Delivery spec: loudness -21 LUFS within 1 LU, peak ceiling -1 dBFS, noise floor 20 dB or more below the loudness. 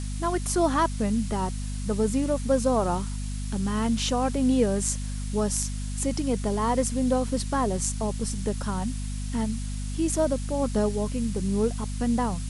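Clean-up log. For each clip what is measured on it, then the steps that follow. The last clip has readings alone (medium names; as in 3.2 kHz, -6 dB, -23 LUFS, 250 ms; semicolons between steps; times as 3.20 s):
hum 50 Hz; highest harmonic 250 Hz; hum level -29 dBFS; noise floor -31 dBFS; noise floor target -47 dBFS; loudness -27.0 LUFS; peak level -10.0 dBFS; loudness target -21.0 LUFS
-> hum notches 50/100/150/200/250 Hz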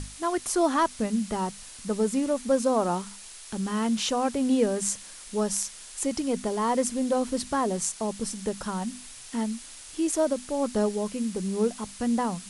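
hum not found; noise floor -45 dBFS; noise floor target -48 dBFS
-> noise reduction 6 dB, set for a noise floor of -45 dBFS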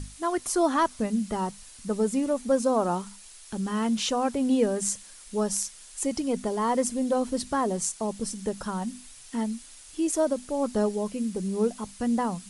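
noise floor -48 dBFS; loudness -28.0 LUFS; peak level -9.5 dBFS; loudness target -21.0 LUFS
-> trim +7 dB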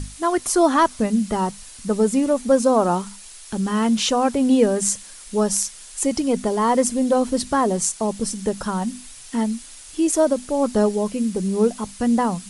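loudness -21.0 LUFS; peak level -2.5 dBFS; noise floor -41 dBFS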